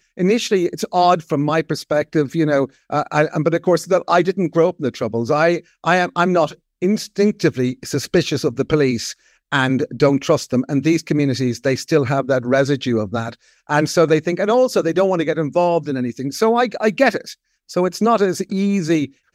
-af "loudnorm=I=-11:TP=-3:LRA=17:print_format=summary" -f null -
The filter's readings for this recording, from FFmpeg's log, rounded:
Input Integrated:    -18.2 LUFS
Input True Peak:      -1.7 dBTP
Input LRA:             1.2 LU
Input Threshold:     -28.4 LUFS